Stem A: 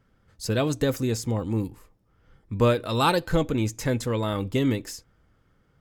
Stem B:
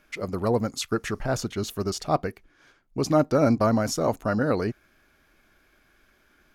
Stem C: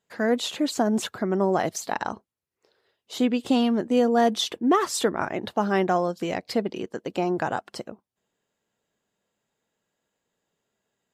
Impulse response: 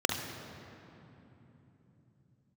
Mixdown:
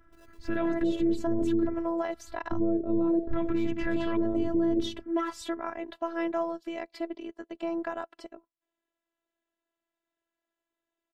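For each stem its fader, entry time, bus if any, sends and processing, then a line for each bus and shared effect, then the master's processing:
+1.5 dB, 0.00 s, no send, bass shelf 300 Hz +8 dB; de-hum 105.3 Hz, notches 7; LFO low-pass square 0.6 Hz 390–1700 Hz
-14.5 dB, 0.00 s, no send, compression 1.5:1, threshold -35 dBFS, peak gain reduction 7.5 dB; sample-rate reducer 2.2 kHz, jitter 0%; saturation -30 dBFS, distortion -9 dB; auto duck -22 dB, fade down 1.40 s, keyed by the first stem
-5.0 dB, 0.45 s, no send, tone controls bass -4 dB, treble -11 dB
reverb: none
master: robot voice 333 Hz; peak limiter -18 dBFS, peak gain reduction 13 dB

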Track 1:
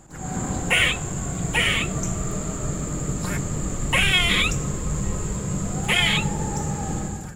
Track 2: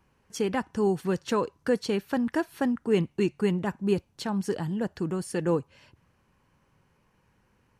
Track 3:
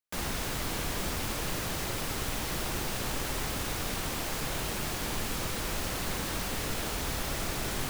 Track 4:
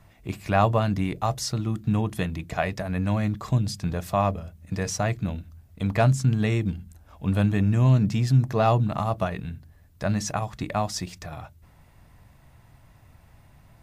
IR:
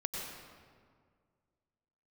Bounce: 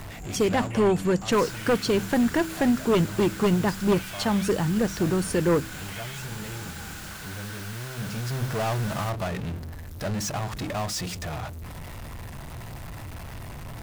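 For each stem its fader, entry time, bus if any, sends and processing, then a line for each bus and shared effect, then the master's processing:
-14.0 dB, 0.00 s, no send, peak limiter -19.5 dBFS, peak gain reduction 12.5 dB
-4.0 dB, 0.00 s, no send, sine folder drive 7 dB, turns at -12 dBFS
-5.5 dB, 1.20 s, no send, high-pass 1.1 kHz; peaking EQ 1.5 kHz +11.5 dB 0.21 oct
-13.5 dB, 0.00 s, no send, power-law waveshaper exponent 0.35; auto duck -10 dB, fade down 1.10 s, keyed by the second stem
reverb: none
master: de-hum 64.72 Hz, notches 5

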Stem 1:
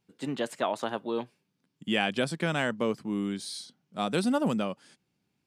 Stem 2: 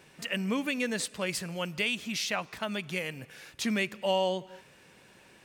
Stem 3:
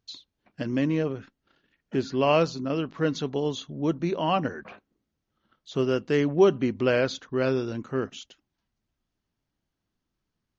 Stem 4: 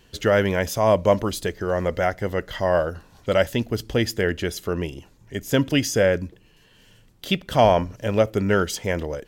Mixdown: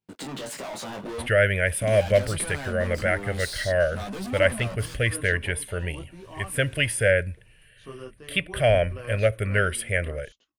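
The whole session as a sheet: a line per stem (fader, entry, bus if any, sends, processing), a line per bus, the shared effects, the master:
+1.5 dB, 0.00 s, bus A, no send, no echo send, peak limiter -22.5 dBFS, peak gain reduction 10.5 dB; waveshaping leveller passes 5
-11.5 dB, 1.65 s, bus A, no send, echo send -20 dB, compression 2:1, threshold -37 dBFS, peak gain reduction 8 dB; vibrato 3.7 Hz 63 cents; three bands compressed up and down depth 100%
-11.5 dB, 2.10 s, bus A, no send, no echo send, peaking EQ 1.1 kHz +12 dB 0.24 oct; random-step tremolo
+2.0 dB, 1.05 s, no bus, no send, no echo send, FFT filter 110 Hz 0 dB, 280 Hz -19 dB, 610 Hz -2 dB, 960 Hz -27 dB, 1.5 kHz +1 dB, 2.3 kHz +4 dB, 6.6 kHz -24 dB, 9.5 kHz +13 dB, 15 kHz -27 dB
bus A: 0.0 dB, chorus voices 2, 0.47 Hz, delay 19 ms, depth 3.7 ms; peak limiter -28.5 dBFS, peak gain reduction 11 dB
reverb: none
echo: delay 556 ms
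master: none

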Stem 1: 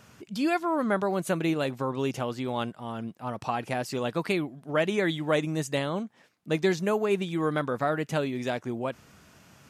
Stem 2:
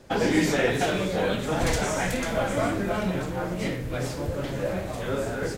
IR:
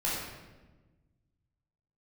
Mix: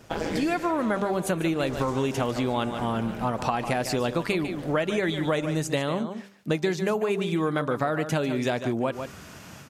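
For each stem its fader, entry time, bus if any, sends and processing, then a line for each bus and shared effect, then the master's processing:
-1.0 dB, 0.00 s, no send, echo send -12.5 dB, de-hum 198.1 Hz, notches 7; level rider gain up to 12 dB
+2.5 dB, 0.00 s, no send, echo send -10 dB, AM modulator 160 Hz, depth 90%; auto duck -12 dB, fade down 0.70 s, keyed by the first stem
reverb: none
echo: delay 147 ms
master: compression 5:1, threshold -23 dBFS, peak gain reduction 12 dB

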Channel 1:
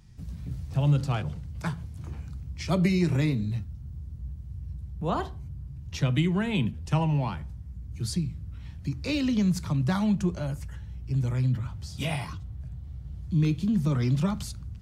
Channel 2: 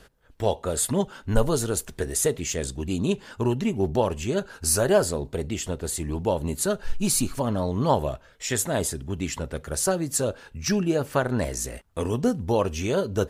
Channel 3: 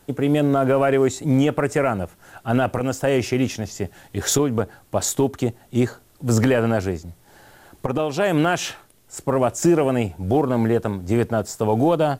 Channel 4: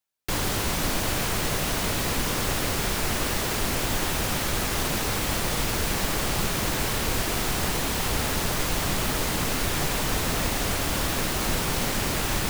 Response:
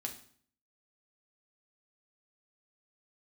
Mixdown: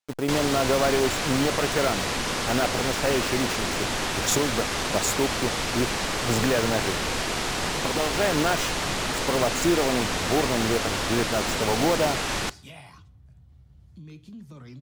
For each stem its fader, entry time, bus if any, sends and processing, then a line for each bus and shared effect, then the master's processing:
-7.5 dB, 0.65 s, send -9 dB, compression 2.5:1, threshold -35 dBFS, peak gain reduction 11 dB
mute
-3.5 dB, 0.00 s, no send, send-on-delta sampling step -27.5 dBFS
0.0 dB, 0.00 s, send -12 dB, low-pass 7.5 kHz 12 dB/octave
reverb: on, RT60 0.55 s, pre-delay 4 ms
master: bass shelf 210 Hz -8.5 dB

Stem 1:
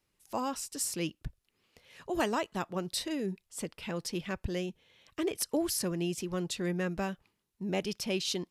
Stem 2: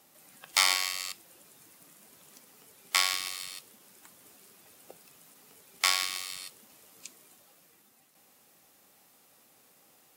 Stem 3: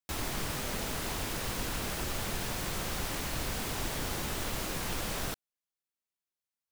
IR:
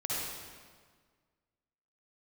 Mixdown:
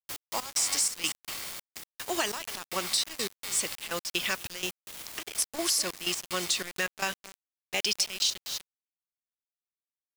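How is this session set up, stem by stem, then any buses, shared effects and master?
+1.5 dB, 0.00 s, bus A, no send, echo send -14 dB, frequency weighting ITU-R 468
0.0 dB, 0.00 s, bus A, no send, no echo send, spectral blur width 1200 ms; chorus 0.29 Hz, delay 16.5 ms, depth 6.2 ms
-2.5 dB, 0.00 s, no bus, no send, echo send -7.5 dB, spectral contrast reduction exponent 0.16; auto duck -14 dB, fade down 1.85 s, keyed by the first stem
bus A: 0.0 dB, level rider gain up to 7 dB; peak limiter -13.5 dBFS, peak gain reduction 10.5 dB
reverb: none
echo: delay 247 ms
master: trance gate "xx..x..xx" 188 bpm -12 dB; word length cut 6-bit, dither none; compression 2.5:1, threshold -24 dBFS, peak gain reduction 3.5 dB

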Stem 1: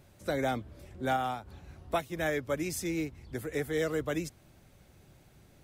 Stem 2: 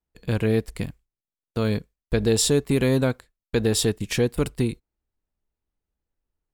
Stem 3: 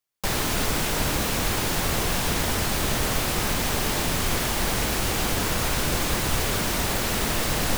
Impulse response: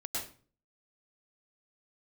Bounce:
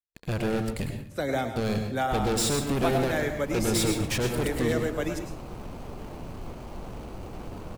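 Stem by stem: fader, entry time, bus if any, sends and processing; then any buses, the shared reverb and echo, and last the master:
-0.5 dB, 0.90 s, send -6 dB, no echo send, expander -52 dBFS
-18.5 dB, 0.00 s, send -3.5 dB, echo send -19 dB, waveshaping leveller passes 5
-11.0 dB, 2.15 s, no send, no echo send, median filter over 25 samples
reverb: on, RT60 0.40 s, pre-delay 97 ms
echo: delay 241 ms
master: none

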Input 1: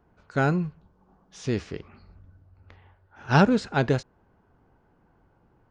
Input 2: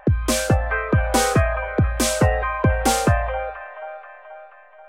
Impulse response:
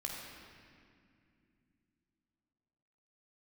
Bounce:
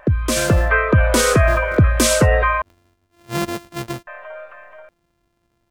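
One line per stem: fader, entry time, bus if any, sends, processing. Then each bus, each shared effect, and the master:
-5.0 dB, 0.00 s, no send, sorted samples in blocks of 128 samples
+2.5 dB, 0.00 s, muted 2.62–4.07 s, no send, band-stop 790 Hz, Q 5; peak limiter -12.5 dBFS, peak gain reduction 6.5 dB; level rider gain up to 5 dB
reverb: none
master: none

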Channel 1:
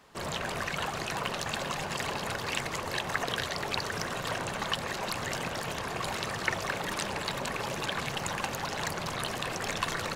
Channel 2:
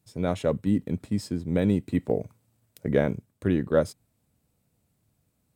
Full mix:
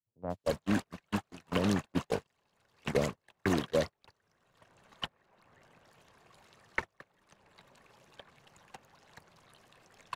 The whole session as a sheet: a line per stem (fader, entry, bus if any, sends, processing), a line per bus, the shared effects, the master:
+0.5 dB, 0.30 s, no send, none
-4.0 dB, 0.00 s, no send, steep low-pass 1 kHz 72 dB/octave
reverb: none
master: gate -25 dBFS, range -49 dB; three bands compressed up and down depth 70%

